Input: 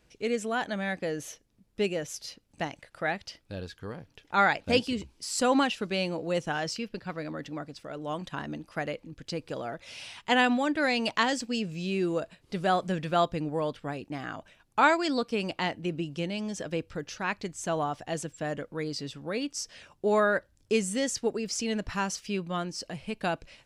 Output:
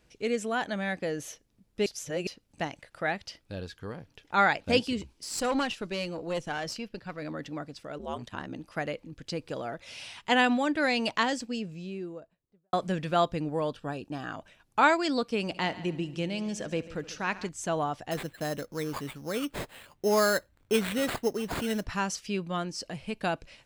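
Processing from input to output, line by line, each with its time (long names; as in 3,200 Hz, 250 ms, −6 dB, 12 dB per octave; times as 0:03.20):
0:01.86–0:02.27: reverse
0:05.13–0:07.22: tube saturation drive 22 dB, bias 0.55
0:07.98–0:08.57: ring modulation 100 Hz → 27 Hz
0:10.96–0:12.73: fade out and dull
0:13.69–0:14.31: Butterworth band-reject 2,100 Hz, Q 4.4
0:15.40–0:17.49: echo machine with several playback heads 71 ms, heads first and second, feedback 45%, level −19 dB
0:18.11–0:21.85: sample-rate reduction 5,800 Hz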